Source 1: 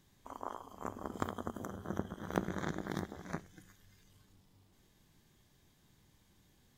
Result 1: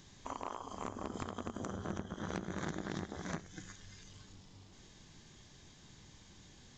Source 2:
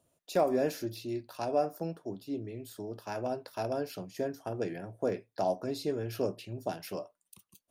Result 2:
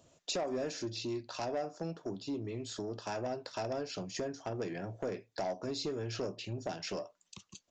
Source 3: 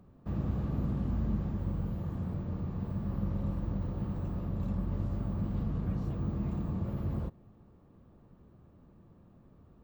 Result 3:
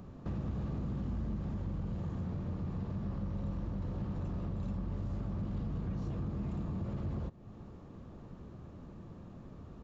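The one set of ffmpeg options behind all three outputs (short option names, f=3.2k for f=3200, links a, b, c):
-af "acompressor=threshold=-47dB:ratio=2.5,aresample=16000,asoftclip=type=tanh:threshold=-37.5dB,aresample=44100,highshelf=f=3.5k:g=6.5,volume=9dB"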